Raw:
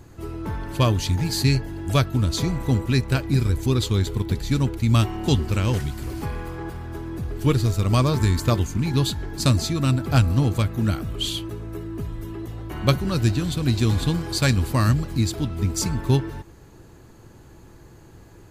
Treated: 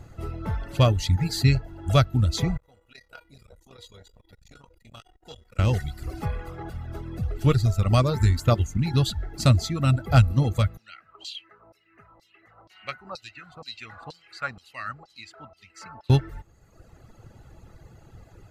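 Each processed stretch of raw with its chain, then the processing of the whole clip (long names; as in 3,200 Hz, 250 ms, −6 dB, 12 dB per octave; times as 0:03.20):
0:02.57–0:05.59: parametric band 120 Hz −13 dB 2.3 octaves + tuned comb filter 480 Hz, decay 0.31 s, mix 90% + saturating transformer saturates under 800 Hz
0:10.77–0:16.10: notch filter 3,400 Hz, Q 6.3 + auto-filter band-pass saw down 2.1 Hz 810–5,000 Hz
whole clip: reverb reduction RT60 1.2 s; high-shelf EQ 6,000 Hz −8.5 dB; comb filter 1.5 ms, depth 45%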